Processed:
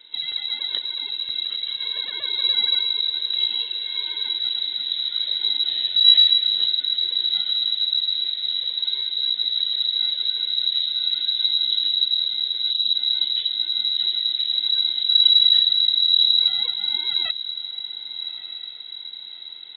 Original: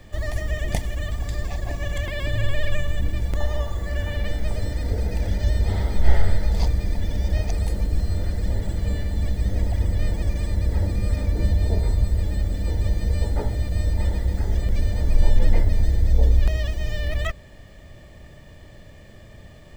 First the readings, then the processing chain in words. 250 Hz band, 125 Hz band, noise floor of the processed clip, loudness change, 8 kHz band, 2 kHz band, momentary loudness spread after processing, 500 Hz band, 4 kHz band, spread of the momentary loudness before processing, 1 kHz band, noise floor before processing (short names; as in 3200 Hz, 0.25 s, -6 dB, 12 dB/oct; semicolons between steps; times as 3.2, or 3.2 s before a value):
under -20 dB, under -40 dB, -37 dBFS, +6.5 dB, n/a, -4.5 dB, 13 LU, under -15 dB, +26.0 dB, 6 LU, under -10 dB, -45 dBFS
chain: diffused feedback echo 1.215 s, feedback 56%, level -13 dB; inverted band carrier 3900 Hz; spectral gain 12.71–12.95, 320–2400 Hz -17 dB; gain -5 dB